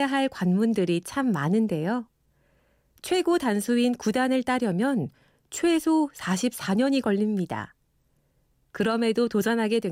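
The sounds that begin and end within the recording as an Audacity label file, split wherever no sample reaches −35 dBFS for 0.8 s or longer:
3.040000	7.650000	sound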